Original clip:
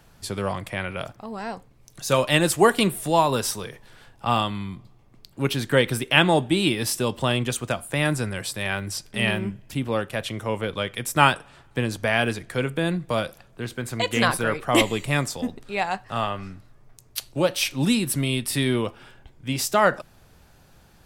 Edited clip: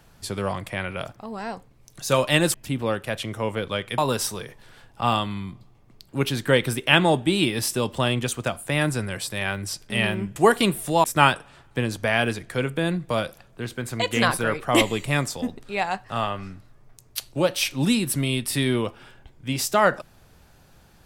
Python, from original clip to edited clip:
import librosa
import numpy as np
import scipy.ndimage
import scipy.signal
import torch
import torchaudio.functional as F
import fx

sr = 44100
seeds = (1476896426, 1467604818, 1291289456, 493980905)

y = fx.edit(x, sr, fx.swap(start_s=2.54, length_s=0.68, other_s=9.6, other_length_s=1.44), tone=tone)